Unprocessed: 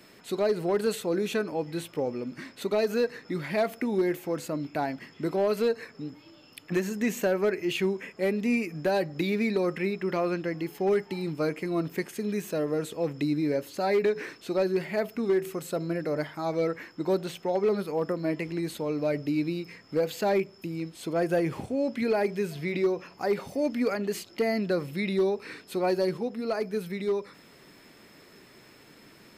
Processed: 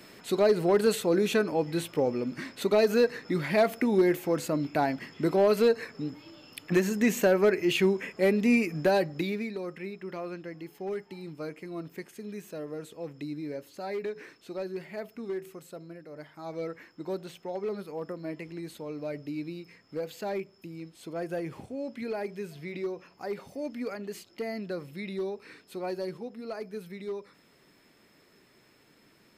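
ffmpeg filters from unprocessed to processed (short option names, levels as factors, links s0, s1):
-af "volume=3.98,afade=t=out:st=8.81:d=0.69:silence=0.237137,afade=t=out:st=15.36:d=0.72:silence=0.421697,afade=t=in:st=16.08:d=0.5:silence=0.354813"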